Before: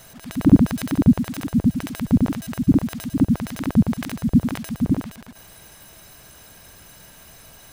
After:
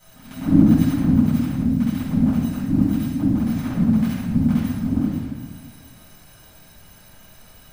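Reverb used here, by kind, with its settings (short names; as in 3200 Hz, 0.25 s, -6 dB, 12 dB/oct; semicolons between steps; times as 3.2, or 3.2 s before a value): shoebox room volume 650 m³, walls mixed, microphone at 7.8 m; gain -16.5 dB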